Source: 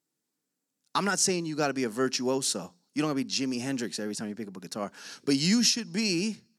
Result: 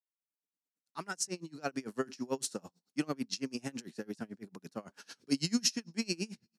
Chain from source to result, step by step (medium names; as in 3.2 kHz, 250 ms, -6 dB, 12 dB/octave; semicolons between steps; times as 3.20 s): fade-in on the opening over 1.96 s; dynamic bell 3.4 kHz, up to -4 dB, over -45 dBFS, Q 3; logarithmic tremolo 9 Hz, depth 28 dB; trim -2 dB